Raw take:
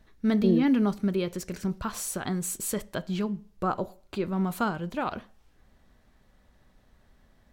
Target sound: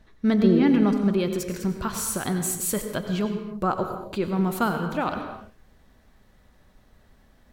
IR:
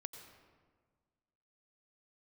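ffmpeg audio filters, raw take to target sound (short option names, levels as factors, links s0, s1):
-filter_complex "[0:a]asetnsamples=n=441:p=0,asendcmd='1.19 highshelf g 4',highshelf=f=11000:g=-9[s0];[1:a]atrim=start_sample=2205,afade=t=out:st=0.38:d=0.01,atrim=end_sample=17199[s1];[s0][s1]afir=irnorm=-1:irlink=0,volume=2.51"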